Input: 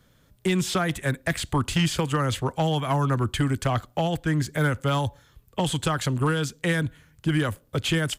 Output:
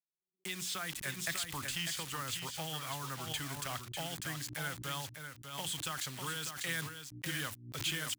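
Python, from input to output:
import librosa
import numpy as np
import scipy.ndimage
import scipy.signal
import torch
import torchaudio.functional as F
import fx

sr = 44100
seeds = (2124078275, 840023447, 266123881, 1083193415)

p1 = fx.quant_dither(x, sr, seeds[0], bits=6, dither='none')
p2 = fx.low_shelf(p1, sr, hz=130.0, db=-11.5)
p3 = fx.rider(p2, sr, range_db=10, speed_s=0.5)
p4 = fx.tone_stack(p3, sr, knobs='5-5-5')
p5 = fx.hum_notches(p4, sr, base_hz=60, count=6)
p6 = p5 + fx.echo_single(p5, sr, ms=597, db=-7.5, dry=0)
y = fx.pre_swell(p6, sr, db_per_s=89.0)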